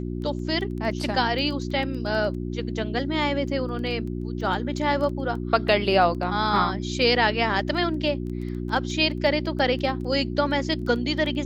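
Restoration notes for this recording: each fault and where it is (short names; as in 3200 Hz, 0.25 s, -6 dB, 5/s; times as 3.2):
crackle 10/s -32 dBFS
hum 60 Hz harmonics 6 -30 dBFS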